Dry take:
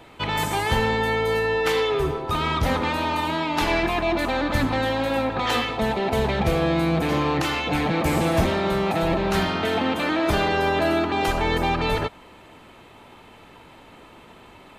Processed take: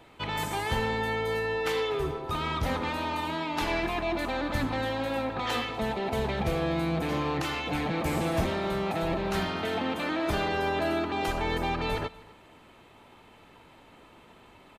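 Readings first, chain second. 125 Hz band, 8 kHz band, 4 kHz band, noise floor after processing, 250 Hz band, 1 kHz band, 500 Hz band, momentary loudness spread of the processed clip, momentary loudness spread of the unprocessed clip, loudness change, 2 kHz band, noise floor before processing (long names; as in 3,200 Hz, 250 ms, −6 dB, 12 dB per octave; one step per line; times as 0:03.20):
−7.0 dB, −7.0 dB, −7.0 dB, −55 dBFS, −7.0 dB, −7.0 dB, −7.0 dB, 3 LU, 3 LU, −7.0 dB, −7.0 dB, −48 dBFS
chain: single-tap delay 246 ms −21.5 dB
level −7 dB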